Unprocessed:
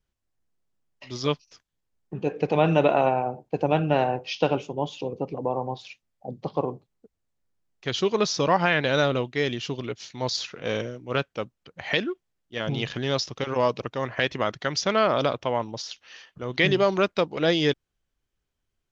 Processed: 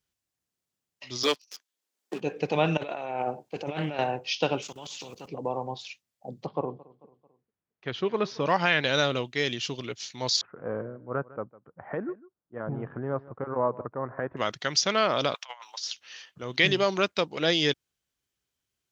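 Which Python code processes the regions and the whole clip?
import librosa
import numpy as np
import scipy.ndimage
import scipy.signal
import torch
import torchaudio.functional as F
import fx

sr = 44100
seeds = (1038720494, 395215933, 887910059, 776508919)

y = fx.chain(x, sr, fx.highpass(hz=280.0, slope=24),
    fx.leveller(passes=2),
    fx.band_squash(depth_pct=40), at=(1.23, 2.21))
y = fx.chain(y, sr, fx.low_shelf(hz=190.0, db=-9.5),
    fx.over_compress(threshold_db=-29.0, ratio=-1.0),
    fx.doppler_dist(depth_ms=0.23), at=(2.77, 3.99))
y = fx.chain(y, sr, fx.level_steps(step_db=18),
    fx.high_shelf(hz=5200.0, db=6.0),
    fx.spectral_comp(ratio=2.0), at=(4.62, 5.28))
y = fx.chain(y, sr, fx.lowpass(hz=1800.0, slope=12),
    fx.echo_feedback(ms=221, feedback_pct=49, wet_db=-22.0), at=(6.46, 8.46))
y = fx.chain(y, sr, fx.steep_lowpass(hz=1400.0, slope=36),
    fx.echo_single(ms=153, db=-19.5), at=(10.41, 14.37))
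y = fx.chain(y, sr, fx.highpass(hz=950.0, slope=24),
    fx.over_compress(threshold_db=-39.0, ratio=-0.5), at=(15.34, 15.83))
y = scipy.signal.sosfilt(scipy.signal.butter(2, 80.0, 'highpass', fs=sr, output='sos'), y)
y = fx.high_shelf(y, sr, hz=2300.0, db=10.0)
y = F.gain(torch.from_numpy(y), -4.5).numpy()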